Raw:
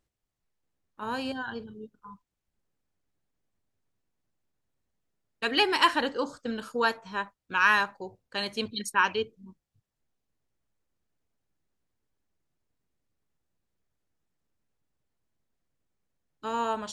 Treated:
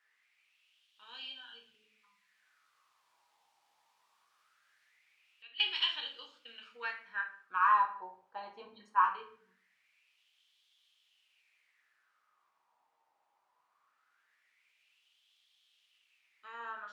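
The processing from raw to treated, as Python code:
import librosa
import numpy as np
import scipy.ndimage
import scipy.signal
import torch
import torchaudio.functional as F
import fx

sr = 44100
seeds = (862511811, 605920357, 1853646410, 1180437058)

y = scipy.signal.sosfilt(scipy.signal.butter(2, 6800.0, 'lowpass', fs=sr, output='sos'), x)
y = fx.quant_dither(y, sr, seeds[0], bits=10, dither='triangular')
y = fx.filter_lfo_bandpass(y, sr, shape='sine', hz=0.21, low_hz=860.0, high_hz=3300.0, q=6.1)
y = fx.room_shoebox(y, sr, seeds[1], volume_m3=58.0, walls='mixed', distance_m=0.58)
y = fx.band_squash(y, sr, depth_pct=100, at=(1.74, 5.6))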